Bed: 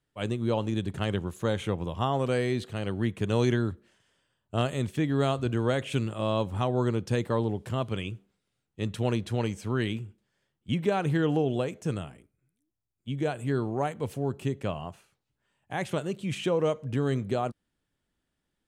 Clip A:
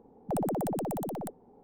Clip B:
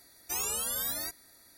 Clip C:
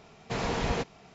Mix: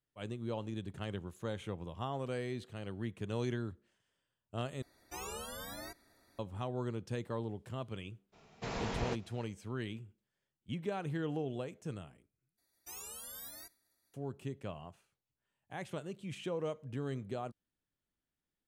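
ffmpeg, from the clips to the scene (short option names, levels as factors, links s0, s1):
-filter_complex "[2:a]asplit=2[s0][s1];[0:a]volume=0.266[s2];[s0]lowpass=f=1500:p=1[s3];[s1]agate=range=0.0224:threshold=0.002:ratio=3:release=100:detection=peak[s4];[s2]asplit=3[s5][s6][s7];[s5]atrim=end=4.824[s8];[s3]atrim=end=1.57,asetpts=PTS-STARTPTS,volume=0.841[s9];[s6]atrim=start=6.386:end=12.574[s10];[s4]atrim=end=1.57,asetpts=PTS-STARTPTS,volume=0.188[s11];[s7]atrim=start=14.136[s12];[3:a]atrim=end=1.14,asetpts=PTS-STARTPTS,volume=0.398,afade=t=in:d=0.02,afade=t=out:st=1.12:d=0.02,adelay=8320[s13];[s8][s9]acrossfade=d=0.004:c1=hsin:c2=hsin[s14];[s14][s10]acrossfade=d=0.004:c1=hsin:c2=hsin[s15];[s15][s11]acrossfade=d=0.004:c1=hsin:c2=hsin[s16];[s16][s12]acrossfade=d=0.004:c1=hsin:c2=hsin[s17];[s17][s13]amix=inputs=2:normalize=0"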